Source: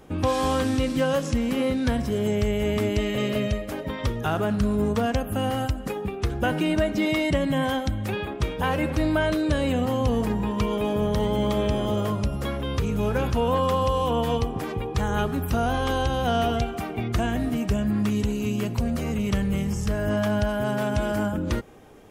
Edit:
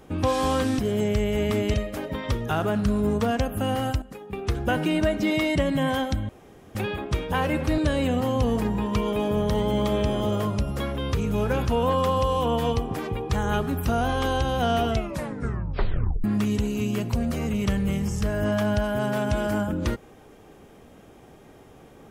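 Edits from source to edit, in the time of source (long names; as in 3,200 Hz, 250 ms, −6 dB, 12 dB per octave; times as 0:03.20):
0:00.79–0:02.06: remove
0:03.01–0:03.49: remove
0:05.77–0:06.08: clip gain −10.5 dB
0:08.04: splice in room tone 0.46 s
0:09.07–0:09.43: remove
0:16.55: tape stop 1.34 s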